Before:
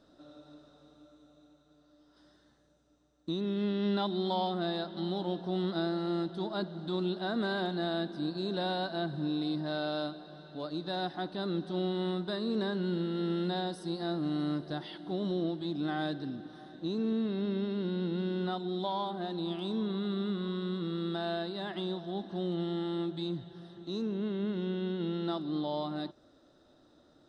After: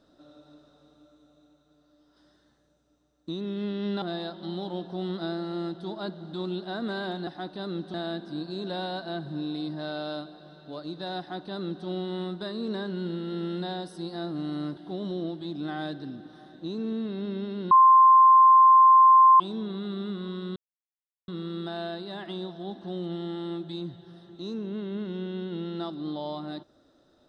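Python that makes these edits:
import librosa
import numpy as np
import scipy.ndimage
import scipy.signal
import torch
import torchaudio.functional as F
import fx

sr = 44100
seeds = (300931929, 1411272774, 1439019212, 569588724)

y = fx.edit(x, sr, fx.cut(start_s=4.02, length_s=0.54),
    fx.duplicate(start_s=11.06, length_s=0.67, to_s=7.81),
    fx.cut(start_s=14.64, length_s=0.33),
    fx.bleep(start_s=17.91, length_s=1.69, hz=1050.0, db=-12.0),
    fx.insert_silence(at_s=20.76, length_s=0.72), tone=tone)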